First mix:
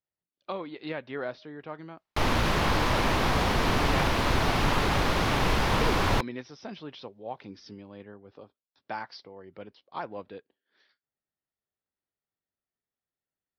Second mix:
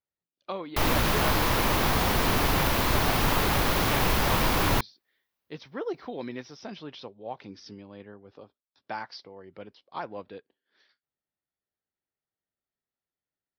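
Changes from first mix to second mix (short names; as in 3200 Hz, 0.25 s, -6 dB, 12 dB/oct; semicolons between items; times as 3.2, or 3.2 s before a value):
background: entry -1.40 s; master: remove air absorption 60 m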